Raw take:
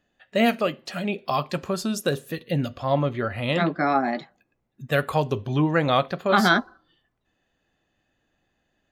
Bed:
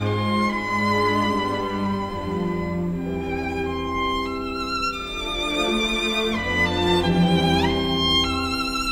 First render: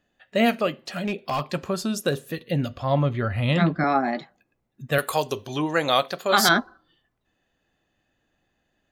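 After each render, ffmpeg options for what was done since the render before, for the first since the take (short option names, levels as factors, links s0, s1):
-filter_complex "[0:a]asettb=1/sr,asplit=3[s0][s1][s2];[s0]atrim=end=0.784[s3];[s1]atrim=start=0.78:end=1.44,asetpts=PTS-STARTPTS,afade=t=in:d=0.004:c=qsin,afade=t=out:st=0.656:d=0.004:c=qsin,asoftclip=type=hard:threshold=0.0944[s4];[s2]atrim=start=1.436[s5];[s3][s4]acrossfade=d=0.004:c1=hsin:c2=qsin[s6];[s6][s5]acrossfade=d=0.004:c1=qsin:c2=hsin,asettb=1/sr,asplit=3[s7][s8][s9];[s7]atrim=end=2.544[s10];[s8]atrim=start=2.54:end=3.84,asetpts=PTS-STARTPTS,afade=t=in:d=0.004:c=qsin,afade=t=out:st=1.296:d=0.004:c=qsin,asubboost=boost=8:cutoff=200[s11];[s9]atrim=start=3.836[s12];[s10][s11]acrossfade=d=0.004:c1=hsin:c2=qsin[s13];[s13][s12]acrossfade=d=0.004:c1=qsin:c2=hsin,asettb=1/sr,asplit=3[s14][s15][s16];[s14]atrim=end=4.984[s17];[s15]atrim=start=4.98:end=6.49,asetpts=PTS-STARTPTS,afade=t=in:d=0.004:c=qsin,afade=t=out:st=1.506:d=0.004:c=qsin,bass=f=250:g=-11,treble=f=4000:g=14[s18];[s16]atrim=start=6.486[s19];[s17][s18]acrossfade=d=0.004:c1=hsin:c2=qsin[s20];[s20][s19]acrossfade=d=0.004:c1=qsin:c2=hsin"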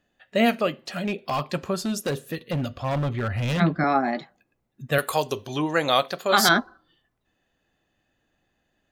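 -filter_complex "[0:a]asettb=1/sr,asplit=3[s0][s1][s2];[s0]atrim=end=1.824[s3];[s1]atrim=start=1.82:end=3.6,asetpts=PTS-STARTPTS,afade=t=in:d=0.004:c=qsin,afade=t=out:st=1.776:d=0.004:c=qsin,volume=12.6,asoftclip=hard,volume=0.0794[s4];[s2]atrim=start=3.596[s5];[s3][s4]acrossfade=d=0.004:c1=hsin:c2=qsin[s6];[s6][s5]acrossfade=d=0.004:c1=qsin:c2=hsin"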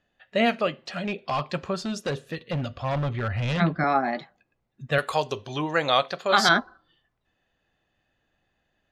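-af "lowpass=5300,equalizer=f=280:t=o:w=1.2:g=-4.5"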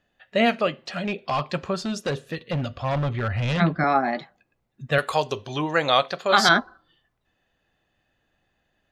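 -af "volume=1.26"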